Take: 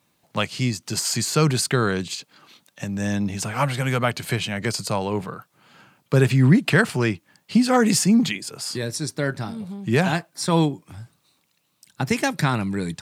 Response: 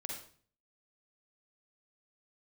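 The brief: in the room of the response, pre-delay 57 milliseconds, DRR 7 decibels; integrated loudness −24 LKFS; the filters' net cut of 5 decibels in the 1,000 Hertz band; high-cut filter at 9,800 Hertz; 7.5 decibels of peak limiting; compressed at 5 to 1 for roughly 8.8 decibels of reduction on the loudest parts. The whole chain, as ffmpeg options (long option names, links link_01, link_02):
-filter_complex "[0:a]lowpass=9800,equalizer=frequency=1000:width_type=o:gain=-7,acompressor=threshold=-22dB:ratio=5,alimiter=limit=-18dB:level=0:latency=1,asplit=2[link_01][link_02];[1:a]atrim=start_sample=2205,adelay=57[link_03];[link_02][link_03]afir=irnorm=-1:irlink=0,volume=-6dB[link_04];[link_01][link_04]amix=inputs=2:normalize=0,volume=4dB"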